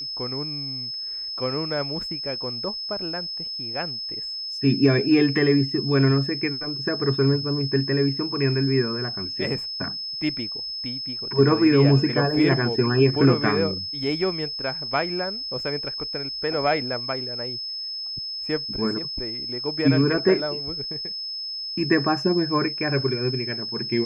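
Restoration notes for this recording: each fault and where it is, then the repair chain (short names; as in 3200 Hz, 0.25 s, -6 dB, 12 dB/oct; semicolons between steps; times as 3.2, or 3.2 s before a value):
tone 5200 Hz -29 dBFS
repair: notch 5200 Hz, Q 30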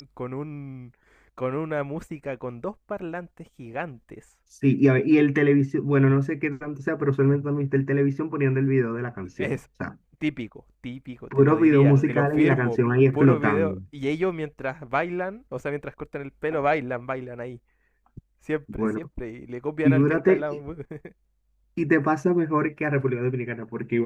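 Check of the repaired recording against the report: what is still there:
none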